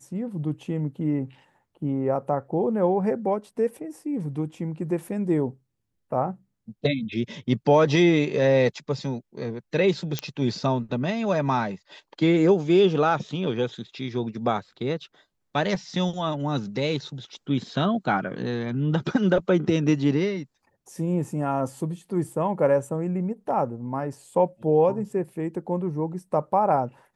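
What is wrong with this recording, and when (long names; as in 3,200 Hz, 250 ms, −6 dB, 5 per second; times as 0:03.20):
0:10.19: click −12 dBFS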